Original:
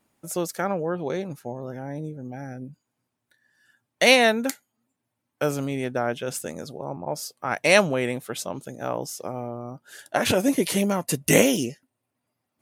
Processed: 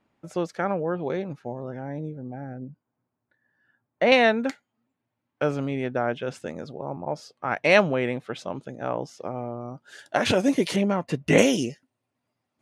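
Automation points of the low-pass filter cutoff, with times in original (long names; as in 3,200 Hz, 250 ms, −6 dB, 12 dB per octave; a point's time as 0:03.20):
3,200 Hz
from 0:02.19 1,400 Hz
from 0:04.12 3,200 Hz
from 0:09.61 5,800 Hz
from 0:10.76 2,700 Hz
from 0:11.38 6,800 Hz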